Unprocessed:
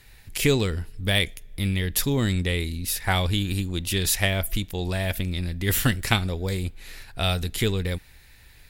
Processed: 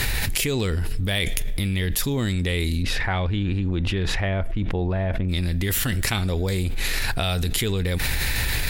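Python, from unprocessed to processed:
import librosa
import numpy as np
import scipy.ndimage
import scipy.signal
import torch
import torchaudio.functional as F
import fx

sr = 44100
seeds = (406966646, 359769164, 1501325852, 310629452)

y = fx.lowpass(x, sr, hz=fx.line((2.82, 2500.0), (5.28, 1200.0)), slope=12, at=(2.82, 5.28), fade=0.02)
y = fx.env_flatten(y, sr, amount_pct=100)
y = y * librosa.db_to_amplitude(-6.0)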